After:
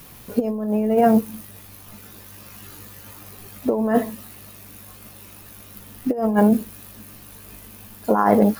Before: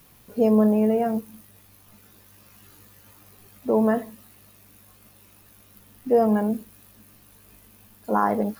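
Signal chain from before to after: compressor with a negative ratio -23 dBFS, ratio -0.5; trim +6.5 dB

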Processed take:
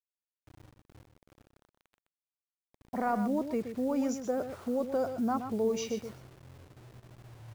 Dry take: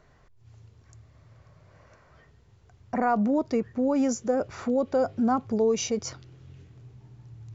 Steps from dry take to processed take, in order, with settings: level-controlled noise filter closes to 360 Hz, open at -19.5 dBFS; bit crusher 8-bit; delay 124 ms -9 dB; trim -6.5 dB

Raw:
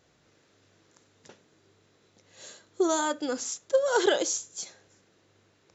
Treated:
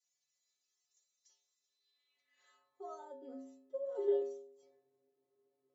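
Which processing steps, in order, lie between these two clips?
band-stop 1.5 kHz, Q 24; inharmonic resonator 130 Hz, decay 0.81 s, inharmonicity 0.008; band-pass sweep 6.2 kHz -> 400 Hz, 1.62–3.23 s; trim +5 dB

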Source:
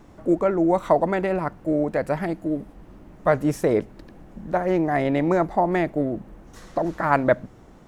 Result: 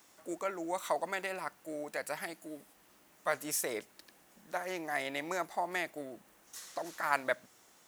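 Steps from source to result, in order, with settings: differentiator; trim +6 dB

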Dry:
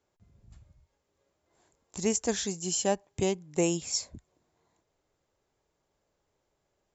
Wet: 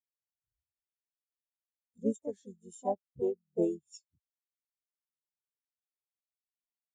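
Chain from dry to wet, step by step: harmony voices -12 st -10 dB, +4 st -3 dB; spectral contrast expander 2.5:1; trim -6 dB

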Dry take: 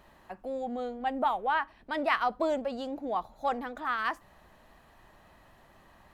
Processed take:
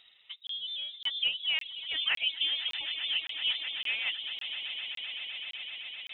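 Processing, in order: distance through air 260 m; frequency inversion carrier 3.8 kHz; on a send: echo with a slow build-up 128 ms, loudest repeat 8, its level -13 dB; on the sum: reverb removal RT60 0.79 s; crackling interface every 0.56 s, samples 1024, zero, from 0.47 s; trim -1 dB

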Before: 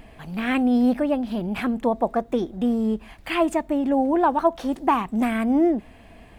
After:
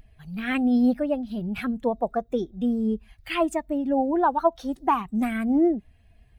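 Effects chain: expander on every frequency bin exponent 1.5

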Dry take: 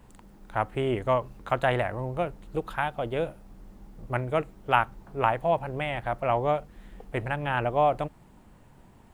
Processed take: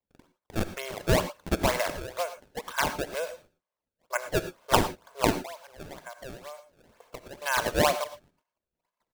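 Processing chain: high-pass 650 Hz 24 dB/octave; gate -59 dBFS, range -30 dB; comb 1.9 ms, depth 89%; 5.32–7.42 s: compression 12:1, threshold -39 dBFS, peak gain reduction 19.5 dB; decimation with a swept rate 25×, swing 160% 2.1 Hz; gated-style reverb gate 130 ms rising, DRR 11 dB

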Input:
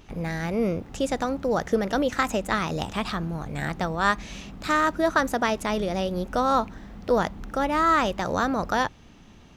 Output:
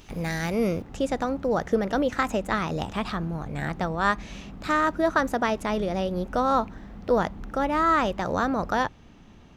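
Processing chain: treble shelf 3 kHz +8 dB, from 0.82 s -6.5 dB

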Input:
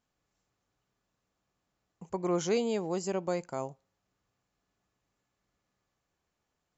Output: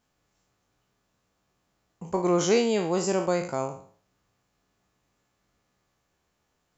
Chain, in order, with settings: spectral sustain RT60 0.49 s; trim +6 dB

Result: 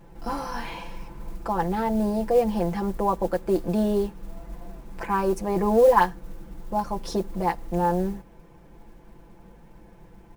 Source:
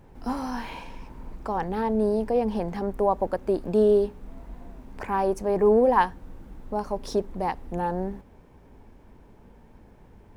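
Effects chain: comb 5.9 ms, depth 88%; modulation noise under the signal 28 dB

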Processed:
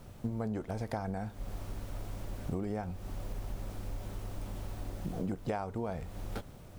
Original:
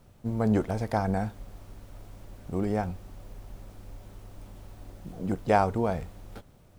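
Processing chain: compression 12:1, threshold -38 dBFS, peak gain reduction 21.5 dB; trim +6 dB

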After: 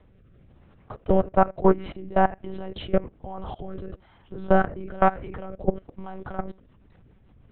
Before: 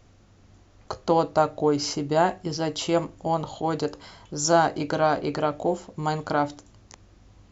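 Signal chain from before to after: monotone LPC vocoder at 8 kHz 190 Hz; low-pass 3 kHz 12 dB/octave; peaking EQ 74 Hz +4.5 dB 2.5 oct; low-pass that closes with the level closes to 2.1 kHz, closed at -18.5 dBFS; level held to a coarse grid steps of 20 dB; rotary cabinet horn 1.1 Hz, later 7 Hz, at 5.82 s; dynamic bell 2.1 kHz, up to +5 dB, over -47 dBFS, Q 1.2; trim +7 dB

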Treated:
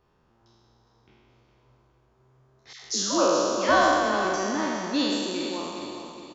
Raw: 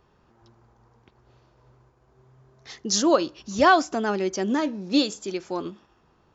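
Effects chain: spectral sustain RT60 2.33 s; 2.73–4.25 s: phase dispersion lows, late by 109 ms, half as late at 770 Hz; on a send: feedback delay 412 ms, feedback 39%, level -9.5 dB; on the sum: trim -7.5 dB

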